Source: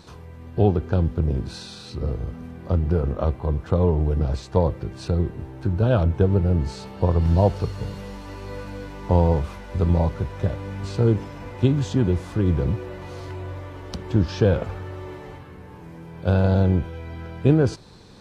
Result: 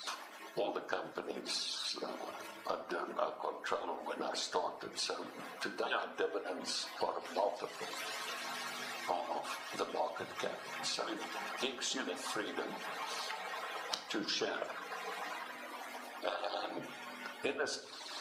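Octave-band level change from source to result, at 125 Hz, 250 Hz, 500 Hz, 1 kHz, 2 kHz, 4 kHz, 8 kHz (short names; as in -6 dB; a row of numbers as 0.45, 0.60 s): under -40 dB, -22.0 dB, -14.5 dB, -5.5 dB, -1.0 dB, +2.5 dB, n/a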